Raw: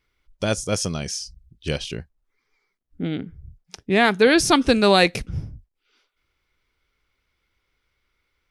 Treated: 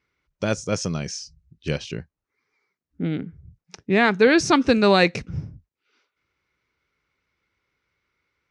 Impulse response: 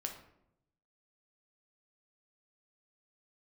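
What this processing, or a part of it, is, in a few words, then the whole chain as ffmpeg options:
car door speaker: -af "highpass=88,equalizer=frequency=160:width_type=q:width=4:gain=3,equalizer=frequency=710:width_type=q:width=4:gain=-3,equalizer=frequency=3300:width_type=q:width=4:gain=-7,equalizer=frequency=4800:width_type=q:width=4:gain=-4,lowpass=frequency=6500:width=0.5412,lowpass=frequency=6500:width=1.3066"

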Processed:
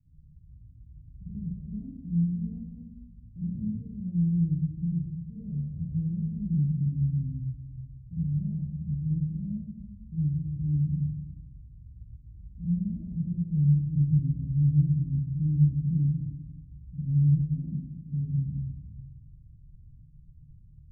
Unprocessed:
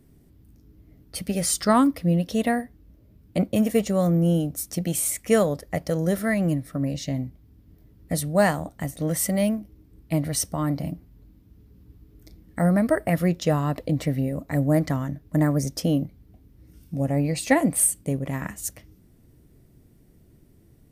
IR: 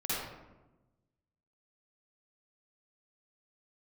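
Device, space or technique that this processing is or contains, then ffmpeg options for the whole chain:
club heard from the street: -filter_complex "[0:a]alimiter=limit=-14dB:level=0:latency=1:release=398,lowpass=frequency=140:width=0.5412,lowpass=frequency=140:width=1.3066[link_01];[1:a]atrim=start_sample=2205[link_02];[link_01][link_02]afir=irnorm=-1:irlink=0,volume=-2.5dB"

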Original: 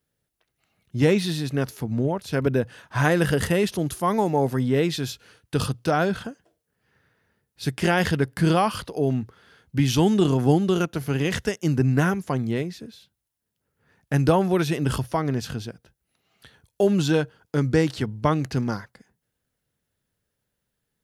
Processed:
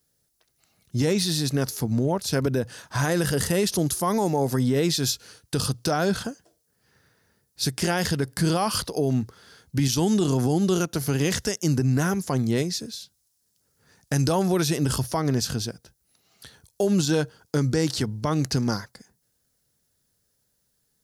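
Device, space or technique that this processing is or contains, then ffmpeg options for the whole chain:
over-bright horn tweeter: -filter_complex "[0:a]highshelf=frequency=3800:width_type=q:width=1.5:gain=8,alimiter=limit=-16.5dB:level=0:latency=1:release=91,asettb=1/sr,asplit=3[link_01][link_02][link_03];[link_01]atrim=end=12.584[link_04];[link_02]atrim=start=12.58:end=14.43,asetpts=PTS-STARTPTS,afade=type=in:duration=0.004:curve=qsin,afade=type=out:start_time=1.846:duration=0.004:curve=qsin,equalizer=frequency=6300:width=0.63:gain=5[link_05];[link_03]atrim=start=14.426[link_06];[link_04][link_05]acrossfade=duration=0.004:curve1=hsin:curve2=qsin[link_07];[link_07][link_06]acrossfade=duration=0.004:curve1=qsin:curve2=hsin,volume=2.5dB"

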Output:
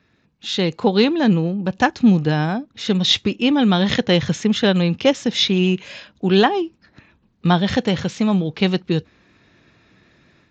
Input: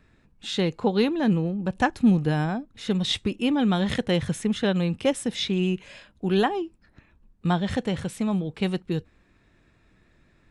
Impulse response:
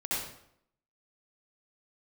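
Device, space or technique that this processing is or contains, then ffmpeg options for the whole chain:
Bluetooth headset: -af "highpass=100,equalizer=frequency=4400:width_type=o:width=1.5:gain=4.5,dynaudnorm=framelen=400:gausssize=3:maxgain=8dB,aresample=16000,aresample=44100" -ar 16000 -c:a sbc -b:a 64k

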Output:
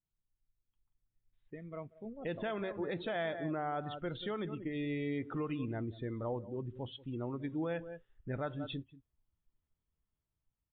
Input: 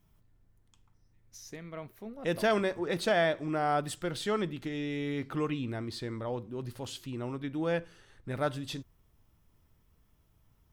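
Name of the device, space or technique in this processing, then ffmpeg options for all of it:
low-bitrate web radio: -filter_complex "[0:a]asettb=1/sr,asplit=3[link_01][link_02][link_03];[link_01]atrim=end=5.364[link_04];[link_02]atrim=start=5.36:end=6.97,asetpts=PTS-STARTPTS,afade=type=in:duration=0.004:curve=qsin,afade=type=out:start_time=1.606:duration=0.004:curve=qsin,highshelf=frequency=7000:gain=-4[link_05];[link_03]atrim=start=6.966[link_06];[link_04][link_05]acrossfade=duration=0.004:curve1=hsin:curve2=qsin[link_07];[link_07][link_06]acrossfade=duration=0.004:curve1=qsin:curve2=hsin,aecho=1:1:185:0.2,afftdn=noise_reduction=19:noise_floor=-42,dynaudnorm=framelen=400:gausssize=5:maxgain=6.5dB,alimiter=limit=-19.5dB:level=0:latency=1:release=132,volume=-8dB" -ar 8000 -c:a libmp3lame -b:a 32k

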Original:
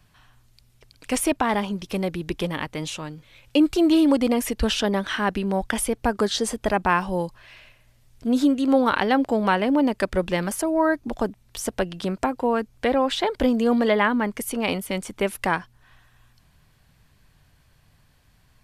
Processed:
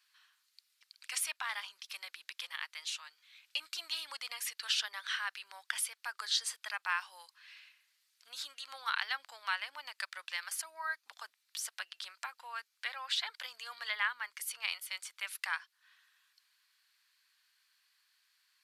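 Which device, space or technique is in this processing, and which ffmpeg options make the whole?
headphones lying on a table: -af "highpass=frequency=1300:width=0.5412,highpass=frequency=1300:width=1.3066,equalizer=frequency=4400:width_type=o:width=0.49:gain=6.5,volume=-8dB"

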